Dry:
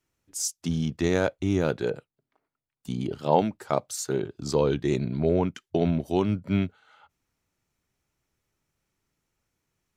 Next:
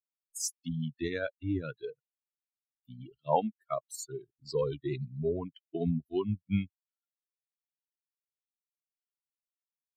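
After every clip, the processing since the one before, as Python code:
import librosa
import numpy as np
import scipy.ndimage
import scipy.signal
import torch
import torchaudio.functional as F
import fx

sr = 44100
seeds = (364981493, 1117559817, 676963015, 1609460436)

y = fx.bin_expand(x, sr, power=3.0)
y = F.gain(torch.from_numpy(y), -1.5).numpy()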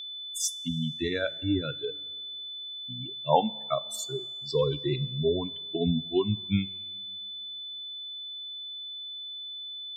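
y = fx.rev_double_slope(x, sr, seeds[0], early_s=0.24, late_s=1.9, knee_db=-18, drr_db=13.5)
y = y + 10.0 ** (-41.0 / 20.0) * np.sin(2.0 * np.pi * 3500.0 * np.arange(len(y)) / sr)
y = F.gain(torch.from_numpy(y), 4.5).numpy()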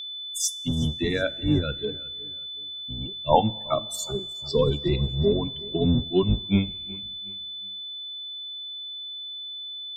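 y = fx.octave_divider(x, sr, octaves=1, level_db=-1.0)
y = fx.echo_feedback(y, sr, ms=369, feedback_pct=34, wet_db=-21.0)
y = F.gain(torch.from_numpy(y), 3.5).numpy()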